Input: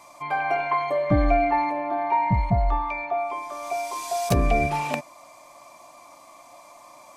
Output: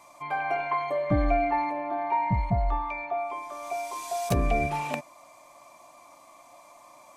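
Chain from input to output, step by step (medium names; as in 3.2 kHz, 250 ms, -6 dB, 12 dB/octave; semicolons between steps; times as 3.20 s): peaking EQ 4.9 kHz -3 dB 0.41 oct; trim -4 dB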